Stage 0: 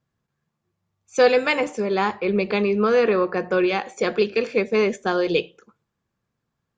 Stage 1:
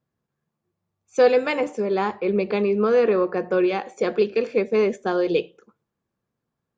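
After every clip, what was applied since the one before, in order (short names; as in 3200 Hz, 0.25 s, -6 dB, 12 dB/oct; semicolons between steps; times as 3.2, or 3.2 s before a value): bell 400 Hz +7 dB 2.8 oct; gain -6.5 dB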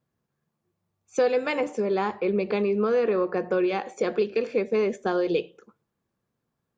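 compressor 2:1, threshold -25 dBFS, peak gain reduction 8 dB; gain +1 dB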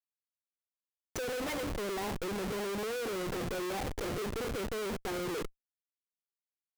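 Schmitt trigger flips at -37 dBFS; gain -8.5 dB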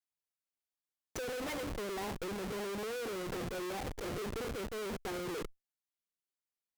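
tube stage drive 35 dB, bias 0.5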